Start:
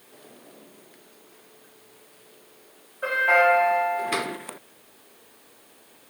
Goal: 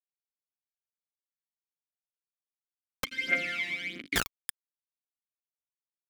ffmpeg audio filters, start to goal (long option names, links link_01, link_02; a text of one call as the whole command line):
ffmpeg -i in.wav -filter_complex "[0:a]aeval=exprs='val(0)*gte(abs(val(0)),0.0891)':channel_layout=same,aphaser=in_gain=1:out_gain=1:delay=1.1:decay=0.7:speed=1.5:type=triangular,asettb=1/sr,asplit=3[link_01][link_02][link_03];[link_01]atrim=end=3.044[link_04];[link_02]atrim=start=3.04:end=4.16,asetpts=PTS-STARTPTS,afade=type=in:duration=0.004:curve=qsin,afade=type=out:start_time=1.116:duration=0.004:curve=qsin,asplit=3[link_05][link_06][link_07];[link_05]bandpass=frequency=270:width_type=q:width=8,volume=0dB[link_08];[link_06]bandpass=frequency=2290:width_type=q:width=8,volume=-6dB[link_09];[link_07]bandpass=frequency=3010:width_type=q:width=8,volume=-9dB[link_10];[link_08][link_09][link_10]amix=inputs=3:normalize=0[link_11];[link_03]atrim=start=4.156[link_12];[link_04][link_11]acrossfade=duration=0.004:curve1=hsin:curve2=qsin[link_13];[link_13][link_12]acrossfade=duration=0.004:curve1=qsin:curve2=hsin,volume=2.5dB" out.wav